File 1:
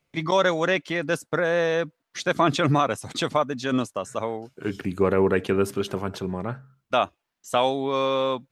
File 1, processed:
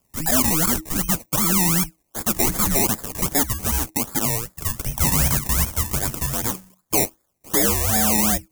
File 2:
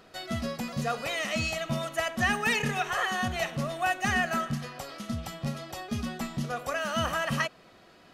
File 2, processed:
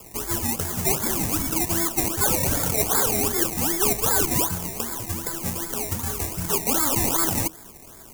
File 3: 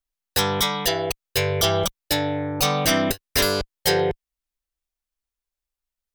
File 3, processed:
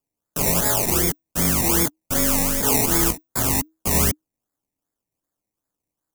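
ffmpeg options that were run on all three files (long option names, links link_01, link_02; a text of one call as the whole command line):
ffmpeg -i in.wav -filter_complex "[0:a]asplit=2[link_01][link_02];[link_02]highpass=frequency=720:poles=1,volume=24dB,asoftclip=type=tanh:threshold=-8dB[link_03];[link_01][link_03]amix=inputs=2:normalize=0,lowpass=frequency=1200:poles=1,volume=-6dB,acrusher=samples=20:mix=1:aa=0.000001:lfo=1:lforange=12:lforate=2.6,aexciter=amount=4.6:drive=6:freq=6000,afreqshift=-320,volume=-5dB" out.wav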